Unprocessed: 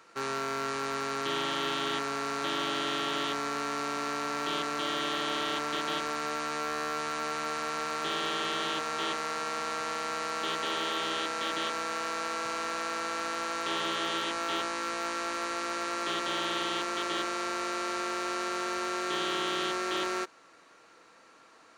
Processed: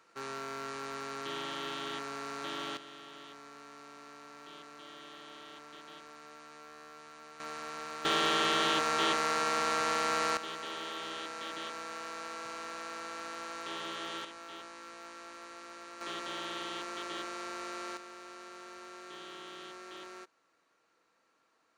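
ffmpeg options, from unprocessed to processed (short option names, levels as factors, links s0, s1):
-af "asetnsamples=n=441:p=0,asendcmd='2.77 volume volume -18.5dB;7.4 volume volume -8.5dB;8.05 volume volume 3dB;10.37 volume volume -8.5dB;14.25 volume volume -15dB;16.01 volume volume -8dB;17.97 volume volume -16dB',volume=0.422"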